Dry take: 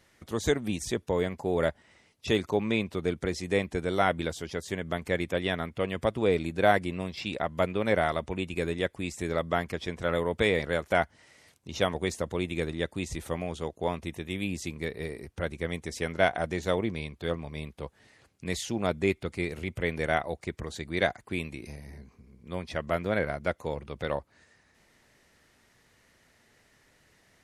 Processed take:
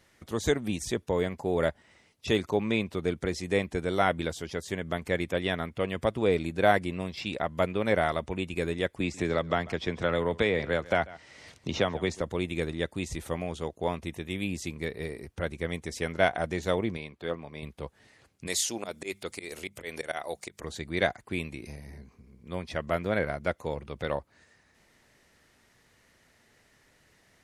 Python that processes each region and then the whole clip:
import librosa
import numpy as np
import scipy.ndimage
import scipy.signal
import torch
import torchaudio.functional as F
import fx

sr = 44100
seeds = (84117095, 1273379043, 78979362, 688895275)

y = fx.chain(x, sr, fx.lowpass(hz=6200.0, slope=12),
    fx.echo_single(ms=141, db=-21.5),
    fx.band_squash(depth_pct=70), at=(9.0, 12.21))
y = fx.chain(y, sr, fx.highpass(hz=270.0, slope=6),
    fx.high_shelf(hz=4600.0, db=-10.0), at=(16.97, 17.63))
y = fx.chain(y, sr, fx.bass_treble(bass_db=-13, treble_db=11),
    fx.auto_swell(attack_ms=131.0),
    fx.hum_notches(base_hz=50, count=4), at=(18.47, 20.64))